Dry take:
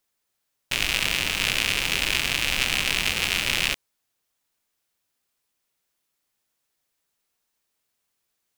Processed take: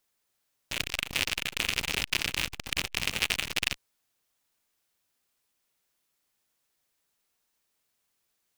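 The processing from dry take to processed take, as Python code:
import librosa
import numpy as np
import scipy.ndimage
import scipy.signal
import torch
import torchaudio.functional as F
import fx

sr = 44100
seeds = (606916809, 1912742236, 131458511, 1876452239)

y = fx.transformer_sat(x, sr, knee_hz=2600.0)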